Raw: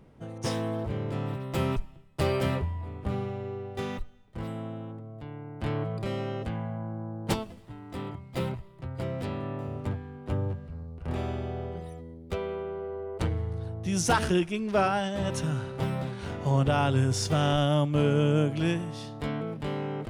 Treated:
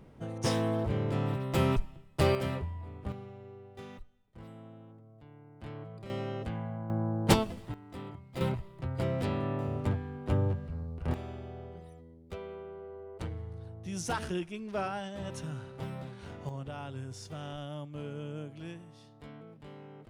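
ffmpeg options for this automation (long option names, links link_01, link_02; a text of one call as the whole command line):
ffmpeg -i in.wav -af "asetnsamples=nb_out_samples=441:pad=0,asendcmd='2.35 volume volume -6dB;3.12 volume volume -13dB;6.1 volume volume -3.5dB;6.9 volume volume 5dB;7.74 volume volume -6.5dB;8.41 volume volume 1.5dB;11.14 volume volume -9.5dB;16.49 volume volume -16.5dB',volume=1dB" out.wav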